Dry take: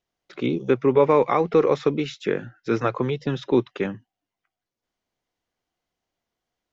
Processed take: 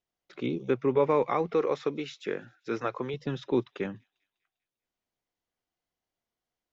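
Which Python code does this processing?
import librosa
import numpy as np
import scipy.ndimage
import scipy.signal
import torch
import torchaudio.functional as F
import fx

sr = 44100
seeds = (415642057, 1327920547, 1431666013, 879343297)

p1 = fx.low_shelf(x, sr, hz=160.0, db=-12.0, at=(1.53, 3.14))
p2 = p1 + fx.echo_wet_highpass(p1, sr, ms=199, feedback_pct=51, hz=3300.0, wet_db=-24.0, dry=0)
y = F.gain(torch.from_numpy(p2), -7.0).numpy()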